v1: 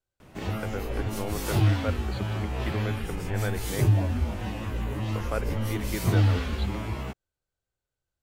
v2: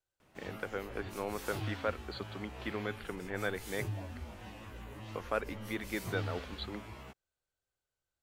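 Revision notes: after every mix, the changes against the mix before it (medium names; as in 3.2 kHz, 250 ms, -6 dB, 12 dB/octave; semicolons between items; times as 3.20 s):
background -11.0 dB; master: add bass shelf 380 Hz -7.5 dB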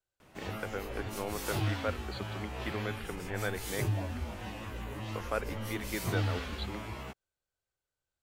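background +7.0 dB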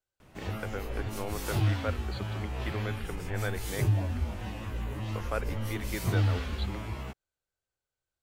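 background: add bass shelf 170 Hz +8.5 dB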